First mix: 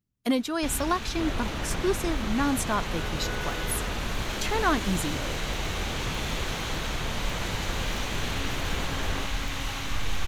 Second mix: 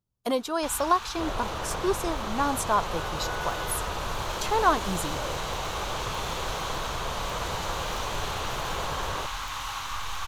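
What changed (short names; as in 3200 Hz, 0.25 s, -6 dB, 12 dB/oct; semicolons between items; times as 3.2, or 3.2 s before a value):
first sound: add resonant low shelf 790 Hz -9.5 dB, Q 1.5; master: add graphic EQ 250/500/1000/2000 Hz -8/+4/+7/-7 dB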